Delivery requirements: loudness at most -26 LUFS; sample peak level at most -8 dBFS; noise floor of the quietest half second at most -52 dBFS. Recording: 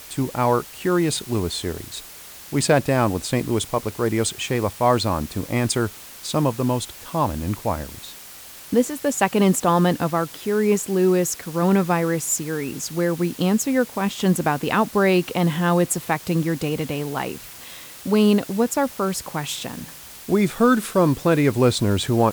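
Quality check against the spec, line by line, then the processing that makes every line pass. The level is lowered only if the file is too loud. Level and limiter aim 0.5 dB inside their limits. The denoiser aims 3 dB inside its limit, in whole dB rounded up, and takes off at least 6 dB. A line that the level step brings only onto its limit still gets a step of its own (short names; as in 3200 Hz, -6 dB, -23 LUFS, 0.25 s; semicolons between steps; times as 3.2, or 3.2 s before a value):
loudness -21.5 LUFS: fail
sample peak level -4.5 dBFS: fail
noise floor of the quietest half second -41 dBFS: fail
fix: denoiser 9 dB, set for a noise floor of -41 dBFS; gain -5 dB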